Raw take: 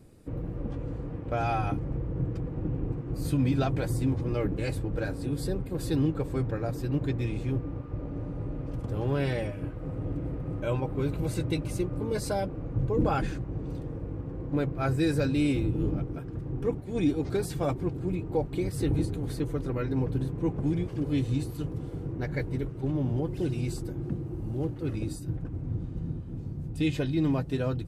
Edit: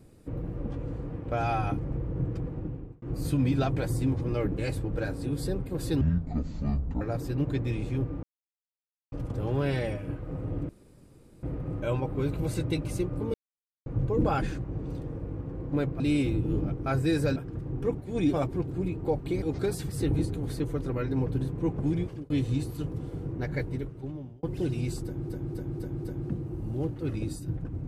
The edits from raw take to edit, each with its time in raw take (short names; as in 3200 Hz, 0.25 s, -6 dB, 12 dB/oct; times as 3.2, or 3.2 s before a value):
2.46–3.02 fade out
6.01–6.55 speed 54%
7.77–8.66 mute
10.23 insert room tone 0.74 s
12.14–12.66 mute
14.8–15.3 move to 16.16
17.13–17.6 move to 18.69
20.84–21.1 fade out
22.4–23.23 fade out
23.84–24.09 loop, 5 plays